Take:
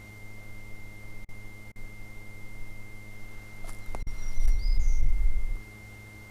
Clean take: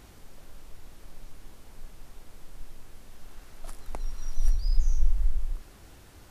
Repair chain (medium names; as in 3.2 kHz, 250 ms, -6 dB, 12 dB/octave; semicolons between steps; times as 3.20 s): clip repair -14 dBFS; de-hum 105.1 Hz, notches 13; band-stop 2.1 kHz, Q 30; interpolate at 1.25/1.72/4.03 s, 36 ms